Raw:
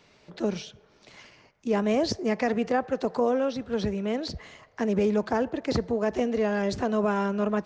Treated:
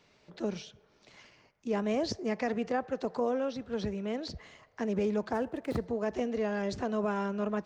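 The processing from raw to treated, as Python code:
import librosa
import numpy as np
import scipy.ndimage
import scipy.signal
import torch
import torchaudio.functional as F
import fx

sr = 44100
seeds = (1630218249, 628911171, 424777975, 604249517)

y = fx.median_filter(x, sr, points=9, at=(5.33, 5.86))
y = y * 10.0 ** (-6.0 / 20.0)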